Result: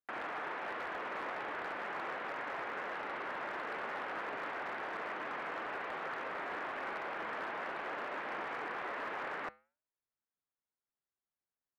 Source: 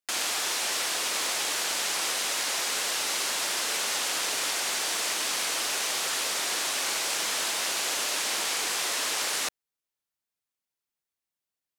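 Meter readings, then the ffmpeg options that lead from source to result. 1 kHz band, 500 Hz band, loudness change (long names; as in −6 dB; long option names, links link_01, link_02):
−4.0 dB, −4.0 dB, −13.5 dB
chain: -af "flanger=delay=4.9:depth=2.1:regen=-89:speed=1:shape=sinusoidal,lowpass=frequency=1800:width=0.5412,lowpass=frequency=1800:width=1.3066,asoftclip=type=hard:threshold=-34.5dB,volume=1dB"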